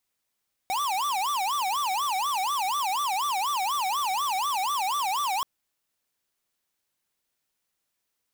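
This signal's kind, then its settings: siren wail 744–1180 Hz 4.1/s square -27 dBFS 4.73 s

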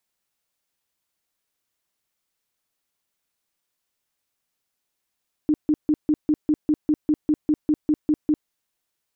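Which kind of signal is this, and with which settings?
tone bursts 303 Hz, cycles 15, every 0.20 s, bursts 15, -15 dBFS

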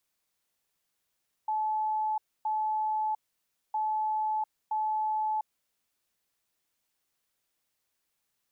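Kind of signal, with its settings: beep pattern sine 863 Hz, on 0.70 s, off 0.27 s, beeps 2, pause 0.59 s, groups 2, -26.5 dBFS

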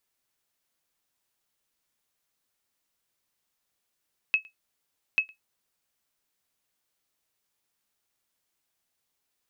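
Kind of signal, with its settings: sonar ping 2580 Hz, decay 0.13 s, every 0.84 s, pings 2, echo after 0.11 s, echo -26.5 dB -14 dBFS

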